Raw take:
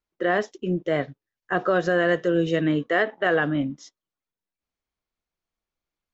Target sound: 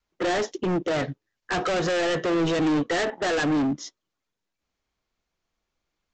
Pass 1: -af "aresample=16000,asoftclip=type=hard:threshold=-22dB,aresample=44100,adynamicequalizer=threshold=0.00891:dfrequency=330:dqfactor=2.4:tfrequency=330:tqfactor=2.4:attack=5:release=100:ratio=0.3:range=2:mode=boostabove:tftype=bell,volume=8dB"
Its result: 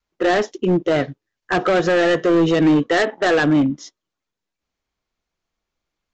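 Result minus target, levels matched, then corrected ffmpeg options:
hard clipping: distortion −5 dB
-af "aresample=16000,asoftclip=type=hard:threshold=-31.5dB,aresample=44100,adynamicequalizer=threshold=0.00891:dfrequency=330:dqfactor=2.4:tfrequency=330:tqfactor=2.4:attack=5:release=100:ratio=0.3:range=2:mode=boostabove:tftype=bell,volume=8dB"

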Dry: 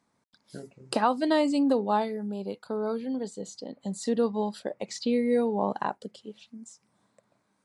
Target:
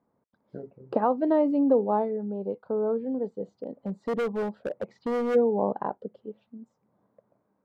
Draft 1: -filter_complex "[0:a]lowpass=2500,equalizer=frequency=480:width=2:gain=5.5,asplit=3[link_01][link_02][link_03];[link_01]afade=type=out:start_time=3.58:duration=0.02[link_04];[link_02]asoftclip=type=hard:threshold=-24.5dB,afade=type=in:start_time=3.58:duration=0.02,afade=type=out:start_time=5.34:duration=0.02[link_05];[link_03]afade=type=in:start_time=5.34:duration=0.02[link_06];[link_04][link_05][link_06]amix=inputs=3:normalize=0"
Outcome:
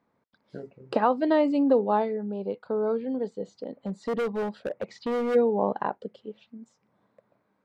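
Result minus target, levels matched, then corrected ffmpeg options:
2,000 Hz band +4.0 dB
-filter_complex "[0:a]lowpass=980,equalizer=frequency=480:width=2:gain=5.5,asplit=3[link_01][link_02][link_03];[link_01]afade=type=out:start_time=3.58:duration=0.02[link_04];[link_02]asoftclip=type=hard:threshold=-24.5dB,afade=type=in:start_time=3.58:duration=0.02,afade=type=out:start_time=5.34:duration=0.02[link_05];[link_03]afade=type=in:start_time=5.34:duration=0.02[link_06];[link_04][link_05][link_06]amix=inputs=3:normalize=0"

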